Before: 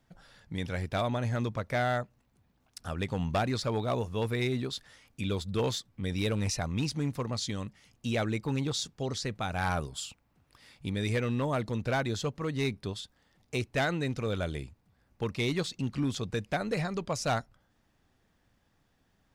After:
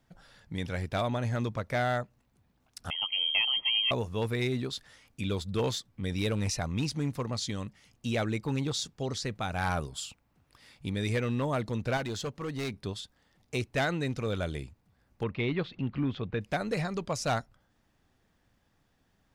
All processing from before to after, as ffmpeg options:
ffmpeg -i in.wav -filter_complex "[0:a]asettb=1/sr,asplit=3[link_01][link_02][link_03];[link_01]atrim=end=2.904[link_04];[link_02]atrim=start=2.9:end=3.91,asetpts=PTS-STARTPTS,afade=type=in:duration=0.004:curve=qsin,afade=type=out:start_time=1.006:duration=0.004:curve=qsin,asubboost=boost=10:cutoff=140,asuperstop=centerf=1700:order=4:qfactor=2.2,lowpass=frequency=2800:width_type=q:width=0.5098,lowpass=frequency=2800:width_type=q:width=0.6013,lowpass=frequency=2800:width_type=q:width=0.9,lowpass=frequency=2800:width_type=q:width=2.563,afreqshift=-3300[link_05];[link_03]atrim=start=3.906[link_06];[link_04][link_05]acrossfade=duration=0.004:curve1=hsin:curve2=qsin[link_07];[link_07][link_06]acrossfade=duration=0.004:curve1=qsin:curve2=hsin,asettb=1/sr,asplit=3[link_08][link_09][link_10];[link_08]atrim=end=11.974[link_11];[link_09]atrim=start=11.97:end=12.74,asetpts=PTS-STARTPTS,afade=type=in:duration=0.004:curve=qsin,afade=type=out:start_time=0.766:duration=0.004:curve=qsin,lowshelf=frequency=170:gain=-4.5,volume=30dB,asoftclip=hard,volume=-30dB[link_12];[link_10]atrim=start=12.736[link_13];[link_11][link_12]acrossfade=duration=0.004:curve1=hsin:curve2=qsin[link_14];[link_14][link_13]acrossfade=duration=0.004:curve1=qsin:curve2=hsin,asettb=1/sr,asplit=3[link_15][link_16][link_17];[link_15]atrim=end=15.234[link_18];[link_16]atrim=start=15.23:end=16.41,asetpts=PTS-STARTPTS,afade=type=in:duration=0.004:curve=qsin,afade=type=out:start_time=1.176:duration=0.004:curve=qsin,lowpass=frequency=3100:width=0.5412,lowpass=frequency=3100:width=1.3066,acompressor=mode=upward:threshold=-40dB:ratio=2.5:attack=3.2:release=140:knee=2.83:detection=peak[link_19];[link_17]atrim=start=16.406[link_20];[link_18][link_19]acrossfade=duration=0.004:curve1=hsin:curve2=qsin[link_21];[link_21][link_20]acrossfade=duration=0.004:curve1=qsin:curve2=hsin" out.wav

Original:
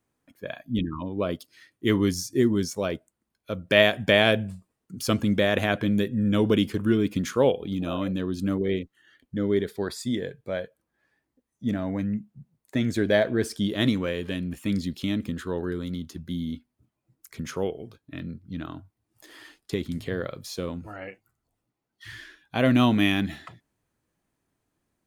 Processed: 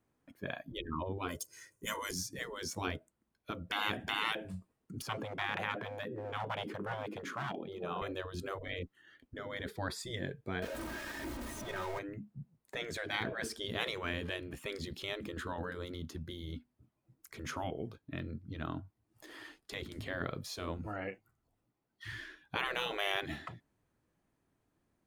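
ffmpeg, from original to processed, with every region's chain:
ffmpeg -i in.wav -filter_complex "[0:a]asettb=1/sr,asplit=3[link_01][link_02][link_03];[link_01]atrim=end=1.284[link_04];[link_02]atrim=start=1.28:end=2.11,asetpts=PTS-STARTPTS,afade=type=in:duration=0.004:curve=qsin,afade=type=out:start_time=0.826:duration=0.004:curve=qsin,highshelf=frequency=5100:width_type=q:width=3:gain=10,aecho=1:1:2:0.69,atrim=end_sample=36603[link_05];[link_03]atrim=start=2.106[link_06];[link_04][link_05]acrossfade=duration=0.004:curve1=hsin:curve2=qsin[link_07];[link_07][link_06]acrossfade=duration=0.004:curve1=qsin:curve2=hsin,asettb=1/sr,asplit=3[link_08][link_09][link_10];[link_08]atrim=end=5.024[link_11];[link_09]atrim=start=5.02:end=8.02,asetpts=PTS-STARTPTS,afade=type=in:duration=0.004:curve=qsin,afade=type=out:start_time=2.996:duration=0.004:curve=qsin,highshelf=frequency=2300:gain=-11.5,aeval=exprs='clip(val(0),-1,0.0841)':channel_layout=same,highpass=frequency=310:width_type=q:width=2.6[link_12];[link_10]atrim=start=8.016[link_13];[link_11][link_12]acrossfade=duration=0.004:curve1=hsin:curve2=qsin[link_14];[link_14][link_13]acrossfade=duration=0.004:curve1=qsin:curve2=hsin,asettb=1/sr,asplit=3[link_15][link_16][link_17];[link_15]atrim=end=10.624[link_18];[link_16]atrim=start=10.62:end=11.99,asetpts=PTS-STARTPTS,afade=type=in:duration=0.004:curve=qsin,afade=type=out:start_time=1.366:duration=0.004:curve=qsin,aeval=exprs='val(0)+0.5*0.0178*sgn(val(0))':channel_layout=same,aecho=1:1:3.2:0.61,atrim=end_sample=60417[link_19];[link_17]atrim=start=11.986[link_20];[link_18][link_19]acrossfade=duration=0.004:curve1=hsin:curve2=qsin[link_21];[link_21][link_20]acrossfade=duration=0.004:curve1=qsin:curve2=hsin,afftfilt=real='re*lt(hypot(re,im),0.126)':imag='im*lt(hypot(re,im),0.126)':win_size=1024:overlap=0.75,highshelf=frequency=2800:gain=-7.5" out.wav

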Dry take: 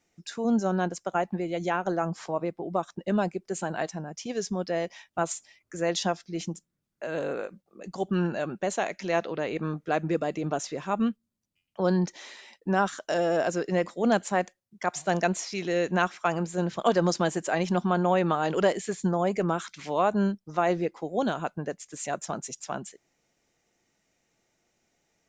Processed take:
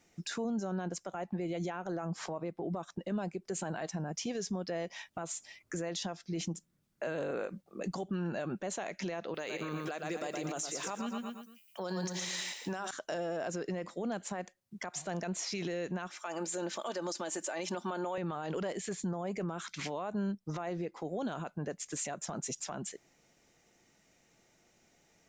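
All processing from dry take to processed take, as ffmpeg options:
ffmpeg -i in.wav -filter_complex "[0:a]asettb=1/sr,asplit=3[link_01][link_02][link_03];[link_01]atrim=end=9.344[link_04];[link_02]atrim=start=9.34:end=12.91,asetpts=PTS-STARTPTS,afade=type=in:duration=0.004:curve=qsin,afade=type=out:start_time=3.566:duration=0.004:curve=qsin,aemphasis=mode=production:type=riaa,aecho=1:1:116|232|348|464:0.422|0.164|0.0641|0.025,atrim=end_sample=157437[link_05];[link_03]atrim=start=12.906[link_06];[link_04][link_05]acrossfade=duration=0.004:curve1=hsin:curve2=qsin[link_07];[link_07][link_06]acrossfade=duration=0.004:curve1=qsin:curve2=hsin,asettb=1/sr,asplit=3[link_08][link_09][link_10];[link_08]atrim=end=16.104[link_11];[link_09]atrim=start=16.1:end=18.18,asetpts=PTS-STARTPTS,afade=type=in:duration=0.004:curve=qsin,afade=type=out:start_time=2.076:duration=0.004:curve=qsin,highpass=340,highshelf=frequency=6300:gain=11,aecho=1:1:3.4:0.36,atrim=end_sample=91728[link_12];[link_10]atrim=start=18.176[link_13];[link_11][link_12]acrossfade=duration=0.004:curve1=hsin:curve2=qsin[link_14];[link_14][link_13]acrossfade=duration=0.004:curve1=qsin:curve2=hsin,equalizer=frequency=170:width_type=o:width=0.77:gain=2,acompressor=threshold=-36dB:ratio=4,alimiter=level_in=9dB:limit=-24dB:level=0:latency=1:release=31,volume=-9dB,volume=5dB" out.wav

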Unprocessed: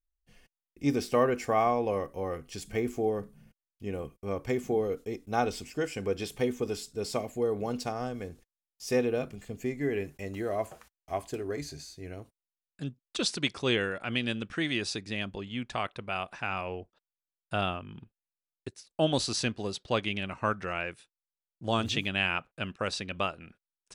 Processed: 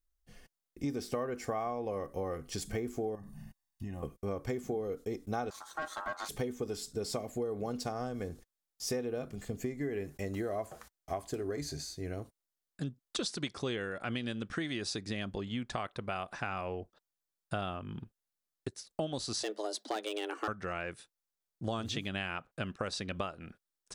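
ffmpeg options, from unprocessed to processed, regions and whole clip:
ffmpeg -i in.wav -filter_complex "[0:a]asettb=1/sr,asplit=3[link_01][link_02][link_03];[link_01]atrim=end=3.154[link_04];[link_02]atrim=start=3.15:end=4.03,asetpts=PTS-STARTPTS,afade=type=in:duration=0.004:curve=qsin,afade=type=out:start_time=0.876:duration=0.004:curve=qsin,acompressor=threshold=-44dB:ratio=4:attack=3.2:release=140:knee=1:detection=peak,aecho=1:1:1.1:0.94,atrim=end_sample=38808[link_05];[link_03]atrim=start=4.026[link_06];[link_04][link_05]acrossfade=duration=0.004:curve1=hsin:curve2=qsin[link_07];[link_07][link_06]acrossfade=duration=0.004:curve1=qsin:curve2=hsin,asettb=1/sr,asplit=3[link_08][link_09][link_10];[link_08]atrim=end=5.504[link_11];[link_09]atrim=start=5.5:end=6.29,asetpts=PTS-STARTPTS,afade=type=in:duration=0.004:curve=qsin,afade=type=out:start_time=0.786:duration=0.004:curve=qsin,aeval=exprs='(tanh(35.5*val(0)+0.75)-tanh(0.75))/35.5':channel_layout=same,aecho=1:1:3.7:0.41,atrim=end_sample=34839,aeval=exprs='val(0)*sin(2*PI*1100*n/s)':channel_layout=same[link_12];[link_10]atrim=start=6.286[link_13];[link_11][link_12]acrossfade=duration=0.004:curve1=hsin:curve2=qsin[link_14];[link_14][link_13]acrossfade=duration=0.004:curve1=qsin:curve2=hsin,asettb=1/sr,asplit=3[link_15][link_16][link_17];[link_15]atrim=end=19.434[link_18];[link_16]atrim=start=19.43:end=20.48,asetpts=PTS-STARTPTS,afade=type=in:duration=0.004:curve=qsin,afade=type=out:start_time=1.046:duration=0.004:curve=qsin,highshelf=frequency=9100:gain=11,asoftclip=type=hard:threshold=-25.5dB,afreqshift=210[link_19];[link_17]atrim=start=20.476[link_20];[link_18][link_19]acrossfade=duration=0.004:curve1=hsin:curve2=qsin[link_21];[link_21][link_20]acrossfade=duration=0.004:curve1=qsin:curve2=hsin,equalizer=frequency=2600:width=2.4:gain=-6.5,bandreject=frequency=940:width=17,acompressor=threshold=-37dB:ratio=6,volume=4dB" out.wav

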